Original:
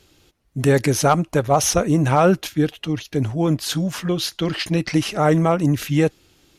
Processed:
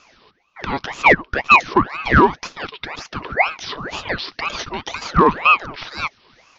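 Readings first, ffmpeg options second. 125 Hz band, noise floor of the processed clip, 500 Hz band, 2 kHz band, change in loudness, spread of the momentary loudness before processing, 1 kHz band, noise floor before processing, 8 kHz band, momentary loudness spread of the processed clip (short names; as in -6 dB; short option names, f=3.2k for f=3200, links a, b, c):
-8.5 dB, -61 dBFS, -3.5 dB, +11.5 dB, +2.0 dB, 7 LU, +5.5 dB, -61 dBFS, -13.5 dB, 17 LU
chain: -filter_complex "[0:a]acrossover=split=990|3100[a][b][c];[a]acompressor=threshold=-26dB:ratio=4[d];[b]acompressor=threshold=-39dB:ratio=4[e];[c]acompressor=threshold=-37dB:ratio=4[f];[d][e][f]amix=inputs=3:normalize=0,highpass=f=700:t=q:w=8.2,aresample=11025,volume=9.5dB,asoftclip=hard,volume=-9.5dB,aresample=44100,aeval=exprs='val(0)*sin(2*PI*1100*n/s+1100*0.75/2*sin(2*PI*2*n/s))':c=same,volume=7.5dB"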